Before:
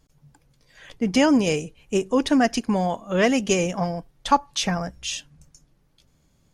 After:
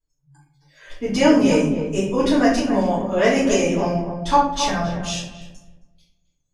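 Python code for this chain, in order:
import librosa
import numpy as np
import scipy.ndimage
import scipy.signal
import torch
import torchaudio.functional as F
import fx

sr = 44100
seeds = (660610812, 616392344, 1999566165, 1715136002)

y = fx.noise_reduce_blind(x, sr, reduce_db=23)
y = fx.echo_filtered(y, sr, ms=268, feedback_pct=27, hz=990.0, wet_db=-6)
y = fx.room_shoebox(y, sr, seeds[0], volume_m3=78.0, walls='mixed', distance_m=2.8)
y = y * 10.0 ** (-9.5 / 20.0)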